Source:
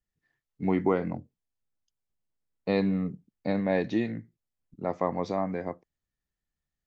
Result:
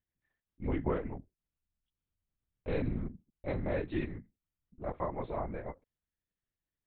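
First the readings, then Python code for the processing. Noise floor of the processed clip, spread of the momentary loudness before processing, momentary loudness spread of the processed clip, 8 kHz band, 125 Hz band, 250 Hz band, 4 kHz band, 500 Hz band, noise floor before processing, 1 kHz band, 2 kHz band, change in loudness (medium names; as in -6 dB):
under -85 dBFS, 12 LU, 12 LU, no reading, -4.0 dB, -9.5 dB, -11.0 dB, -7.5 dB, under -85 dBFS, -7.5 dB, -7.0 dB, -7.5 dB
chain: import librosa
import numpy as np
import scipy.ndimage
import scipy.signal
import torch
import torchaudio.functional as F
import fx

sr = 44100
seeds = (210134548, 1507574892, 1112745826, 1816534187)

y = fx.lpc_vocoder(x, sr, seeds[0], excitation='whisper', order=8)
y = F.gain(torch.from_numpy(y), -7.0).numpy()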